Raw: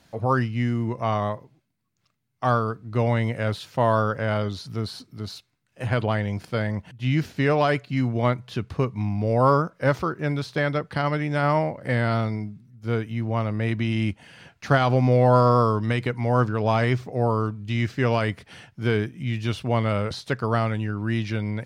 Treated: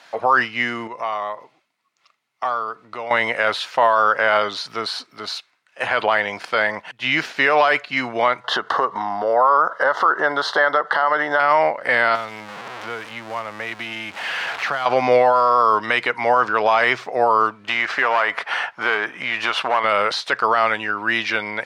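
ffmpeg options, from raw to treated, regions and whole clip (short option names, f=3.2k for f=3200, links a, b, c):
-filter_complex "[0:a]asettb=1/sr,asplit=3[a][b][c];[a]atrim=end=0.874[d];[b]atrim=start=0.87:end=3.11,asetpts=PTS-STARTPTS,afade=t=in:d=0.004:c=qsin,afade=t=out:st=2.236:d=0.004:c=qsin,bandreject=f=1.6k:w=7,acompressor=threshold=-37dB:ratio=2.5:attack=3.2:release=140:knee=1:detection=peak[e];[c]atrim=start=3.106[f];[d][e]acrossfade=d=0.004:c1=hsin:c2=qsin[g];[g][f]acrossfade=d=0.004:c1=qsin:c2=hsin,asettb=1/sr,asplit=3[h][i][j];[h]atrim=end=8.444[k];[i]atrim=start=8.44:end=11.4,asetpts=PTS-STARTPTS,afade=t=in:d=0.004:c=qsin,afade=t=out:st=2.956:d=0.004:c=qsin,equalizer=f=900:w=0.3:g=14.5,acompressor=threshold=-25dB:ratio=4:attack=3.2:release=140:knee=1:detection=peak,asuperstop=centerf=2400:order=4:qfactor=2.4[l];[j]atrim=start=11.396[m];[k][l]acrossfade=d=0.004:c1=hsin:c2=qsin[n];[n][m]acrossfade=d=0.004:c1=qsin:c2=hsin,asettb=1/sr,asplit=3[o][p][q];[o]atrim=end=12.154[r];[p]atrim=start=12.15:end=14.86,asetpts=PTS-STARTPTS,afade=t=in:d=0.004:c=qsin,afade=t=out:st=2.706:d=0.004:c=qsin,aeval=exprs='val(0)+0.5*0.0316*sgn(val(0))':c=same,acrossover=split=160|4500[s][t][u];[s]acompressor=threshold=-31dB:ratio=4[v];[t]acompressor=threshold=-37dB:ratio=4[w];[u]acompressor=threshold=-56dB:ratio=4[x];[v][w][x]amix=inputs=3:normalize=0[y];[q]atrim=start=14.856[z];[r][y]acrossfade=d=0.004:c1=hsin:c2=qsin[aa];[aa][z]acrossfade=d=0.004:c1=qsin:c2=hsin,asettb=1/sr,asplit=3[ab][ac][ad];[ab]atrim=end=17.644[ae];[ac]atrim=start=17.64:end=19.84,asetpts=PTS-STARTPTS,afade=t=in:d=0.004:c=qsin,afade=t=out:st=2.196:d=0.004:c=qsin,equalizer=f=1k:w=0.56:g=13,acompressor=threshold=-25dB:ratio=6:attack=3.2:release=140:knee=1:detection=peak,aeval=exprs='clip(val(0),-1,0.0335)':c=same[af];[ad]atrim=start=19.836[ag];[ae][af]acrossfade=d=0.004:c1=hsin:c2=qsin[ah];[ah][ag]acrossfade=d=0.004:c1=qsin:c2=hsin,highpass=940,aemphasis=mode=reproduction:type=75fm,alimiter=level_in=22.5dB:limit=-1dB:release=50:level=0:latency=1,volume=-5dB"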